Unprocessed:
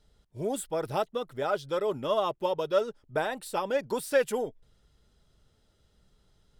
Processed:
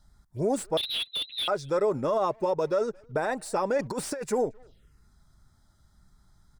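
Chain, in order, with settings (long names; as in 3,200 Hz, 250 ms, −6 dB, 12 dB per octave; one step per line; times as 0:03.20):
dynamic equaliser 2,600 Hz, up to +5 dB, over −47 dBFS, Q 1.3
brickwall limiter −22.5 dBFS, peak gain reduction 10 dB
0:03.78–0:04.24: compressor whose output falls as the input rises −34 dBFS, ratio −0.5
phaser swept by the level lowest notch 420 Hz, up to 3,100 Hz, full sweep at −37.5 dBFS
0:00.77–0:01.48: voice inversion scrambler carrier 4,000 Hz
far-end echo of a speakerphone 220 ms, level −27 dB
slew-rate limiting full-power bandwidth 69 Hz
level +6 dB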